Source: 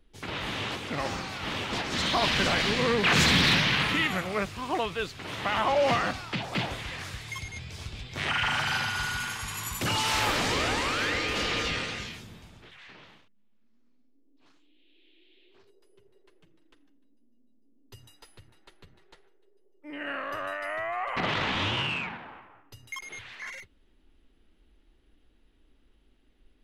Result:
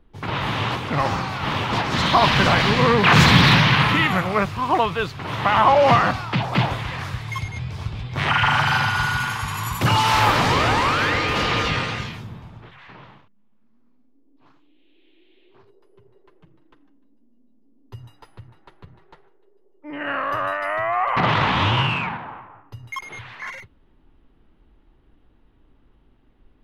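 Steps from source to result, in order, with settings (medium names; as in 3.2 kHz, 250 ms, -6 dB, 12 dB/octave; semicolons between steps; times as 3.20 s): ten-band graphic EQ 125 Hz +10 dB, 1 kHz +8 dB, 8 kHz -6 dB; tape noise reduction on one side only decoder only; trim +5.5 dB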